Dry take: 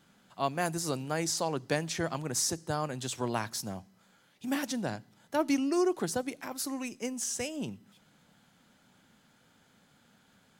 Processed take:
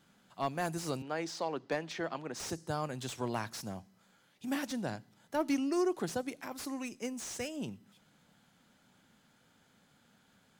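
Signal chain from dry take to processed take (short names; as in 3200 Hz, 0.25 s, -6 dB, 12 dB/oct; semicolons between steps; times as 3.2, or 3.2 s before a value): in parallel at -10.5 dB: soft clip -24 dBFS, distortion -15 dB; 1.02–2.4 on the sum: three-band isolator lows -17 dB, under 200 Hz, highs -19 dB, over 4900 Hz; slew limiter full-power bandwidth 100 Hz; gain -5 dB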